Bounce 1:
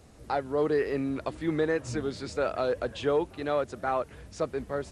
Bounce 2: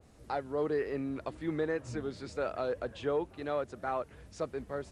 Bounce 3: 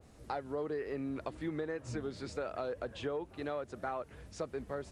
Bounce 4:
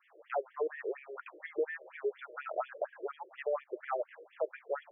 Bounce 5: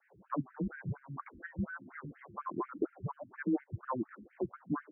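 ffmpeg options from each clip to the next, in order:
-af "adynamicequalizer=threshold=0.00501:dfrequency=2600:dqfactor=0.7:tfrequency=2600:tqfactor=0.7:attack=5:release=100:ratio=0.375:range=2.5:mode=cutabove:tftype=highshelf,volume=-5.5dB"
-af "acompressor=threshold=-35dB:ratio=6,volume=1dB"
-af "afftfilt=real='re*between(b*sr/1024,430*pow(2500/430,0.5+0.5*sin(2*PI*4.2*pts/sr))/1.41,430*pow(2500/430,0.5+0.5*sin(2*PI*4.2*pts/sr))*1.41)':imag='im*between(b*sr/1024,430*pow(2500/430,0.5+0.5*sin(2*PI*4.2*pts/sr))/1.41,430*pow(2500/430,0.5+0.5*sin(2*PI*4.2*pts/sr))*1.41)':win_size=1024:overlap=0.75,volume=8dB"
-filter_complex "[0:a]highpass=f=350:t=q:w=0.5412,highpass=f=350:t=q:w=1.307,lowpass=f=2.2k:t=q:w=0.5176,lowpass=f=2.2k:t=q:w=0.7071,lowpass=f=2.2k:t=q:w=1.932,afreqshift=-270,asplit=2[a][b];[b]afreqshift=1.4[c];[a][c]amix=inputs=2:normalize=1,volume=3.5dB"

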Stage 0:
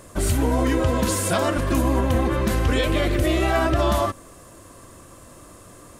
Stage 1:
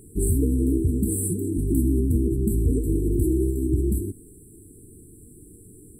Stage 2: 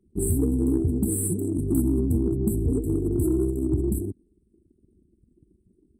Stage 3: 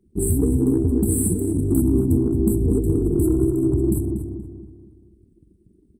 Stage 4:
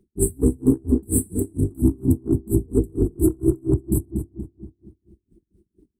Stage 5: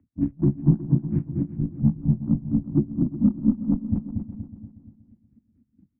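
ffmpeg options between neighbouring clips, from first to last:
-af "afftfilt=real='re*(1-between(b*sr/4096,470,7600))':imag='im*(1-between(b*sr/4096,470,7600))':win_size=4096:overlap=0.75"
-af "highpass=73,aeval=exprs='0.299*(cos(1*acos(clip(val(0)/0.299,-1,1)))-cos(1*PI/2))+0.00944*(cos(4*acos(clip(val(0)/0.299,-1,1)))-cos(4*PI/2))+0.0106*(cos(6*acos(clip(val(0)/0.299,-1,1)))-cos(6*PI/2))':c=same,anlmdn=1.58"
-filter_complex "[0:a]asplit=2[a][b];[b]adelay=238,lowpass=f=2.7k:p=1,volume=-5dB,asplit=2[c][d];[d]adelay=238,lowpass=f=2.7k:p=1,volume=0.44,asplit=2[e][f];[f]adelay=238,lowpass=f=2.7k:p=1,volume=0.44,asplit=2[g][h];[h]adelay=238,lowpass=f=2.7k:p=1,volume=0.44,asplit=2[i][j];[j]adelay=238,lowpass=f=2.7k:p=1,volume=0.44[k];[a][c][e][g][i][k]amix=inputs=6:normalize=0,volume=3.5dB"
-af "aeval=exprs='val(0)*pow(10,-34*(0.5-0.5*cos(2*PI*4.3*n/s))/20)':c=same,volume=5dB"
-af "aecho=1:1:366|732|1098:0.2|0.0479|0.0115,highpass=f=180:t=q:w=0.5412,highpass=f=180:t=q:w=1.307,lowpass=f=2.4k:t=q:w=0.5176,lowpass=f=2.4k:t=q:w=0.7071,lowpass=f=2.4k:t=q:w=1.932,afreqshift=-110"

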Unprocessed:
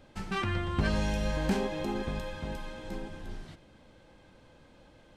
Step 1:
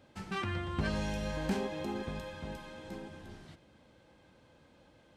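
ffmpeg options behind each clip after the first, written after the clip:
-af "highpass=60,volume=-4dB"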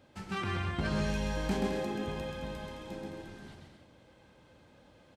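-af "aecho=1:1:130|214.5|269.4|305.1|328.3:0.631|0.398|0.251|0.158|0.1"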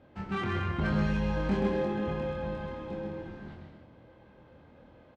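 -filter_complex "[0:a]asplit=2[a][b];[b]asoftclip=type=tanh:threshold=-32.5dB,volume=-7.5dB[c];[a][c]amix=inputs=2:normalize=0,adynamicsmooth=sensitivity=2:basefreq=2.3k,asplit=2[d][e];[e]adelay=25,volume=-3dB[f];[d][f]amix=inputs=2:normalize=0"

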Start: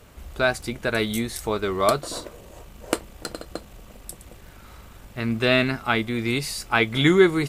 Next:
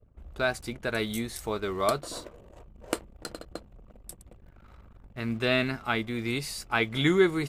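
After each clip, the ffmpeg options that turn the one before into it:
-af "anlmdn=0.0398,volume=-6dB"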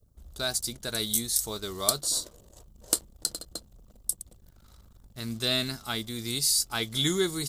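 -af "bass=f=250:g=4,treble=f=4k:g=-3,aexciter=amount=13.2:drive=4.4:freq=3.7k,volume=-6.5dB"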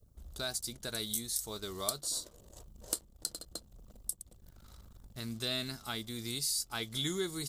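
-af "acompressor=threshold=-47dB:ratio=1.5"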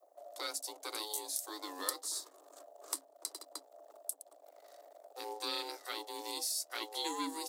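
-af "aeval=exprs='val(0)*sin(2*PI*370*n/s)':c=same,afreqshift=270"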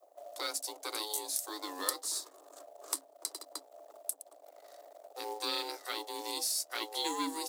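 -af "acrusher=bits=5:mode=log:mix=0:aa=0.000001,volume=3dB"

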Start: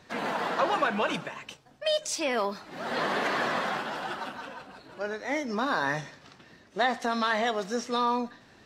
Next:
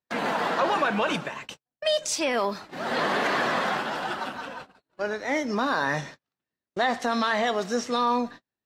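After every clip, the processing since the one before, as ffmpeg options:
-filter_complex "[0:a]agate=range=-41dB:threshold=-44dB:ratio=16:detection=peak,asplit=2[a][b];[b]alimiter=limit=-21dB:level=0:latency=1:release=16,volume=3dB[c];[a][c]amix=inputs=2:normalize=0,volume=-3.5dB"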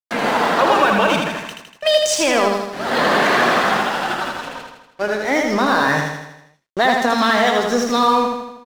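-af "aeval=exprs='sgn(val(0))*max(abs(val(0))-0.0075,0)':c=same,aecho=1:1:80|160|240|320|400|480|560:0.631|0.347|0.191|0.105|0.0577|0.0318|0.0175,volume=8.5dB"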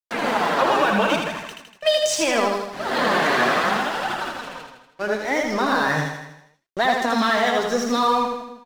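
-af "flanger=delay=0.8:depth=7.5:regen=51:speed=0.73:shape=triangular"

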